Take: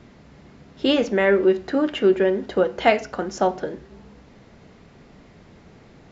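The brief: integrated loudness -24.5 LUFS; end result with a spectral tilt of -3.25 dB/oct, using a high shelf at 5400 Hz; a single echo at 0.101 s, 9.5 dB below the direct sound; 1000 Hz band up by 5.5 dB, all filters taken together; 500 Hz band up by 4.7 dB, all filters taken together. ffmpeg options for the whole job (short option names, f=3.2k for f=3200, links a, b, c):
-af "equalizer=f=500:t=o:g=5,equalizer=f=1k:t=o:g=5.5,highshelf=f=5.4k:g=5,aecho=1:1:101:0.335,volume=-8dB"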